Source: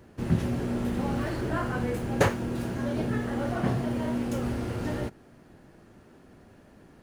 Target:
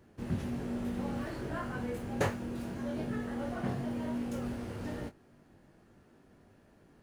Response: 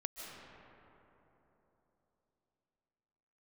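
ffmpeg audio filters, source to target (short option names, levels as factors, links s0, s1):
-filter_complex "[0:a]asplit=2[s0][s1];[1:a]atrim=start_sample=2205,atrim=end_sample=3528,adelay=21[s2];[s1][s2]afir=irnorm=-1:irlink=0,volume=0.668[s3];[s0][s3]amix=inputs=2:normalize=0,volume=0.376"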